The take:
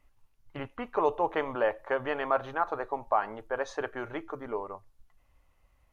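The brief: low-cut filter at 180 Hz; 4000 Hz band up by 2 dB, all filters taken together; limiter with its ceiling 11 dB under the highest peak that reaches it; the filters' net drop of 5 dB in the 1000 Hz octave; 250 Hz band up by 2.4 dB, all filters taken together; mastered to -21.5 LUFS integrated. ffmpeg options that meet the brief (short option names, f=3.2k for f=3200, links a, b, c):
-af "highpass=180,equalizer=f=250:t=o:g=4.5,equalizer=f=1k:t=o:g=-7,equalizer=f=4k:t=o:g=3.5,volume=18dB,alimiter=limit=-9dB:level=0:latency=1"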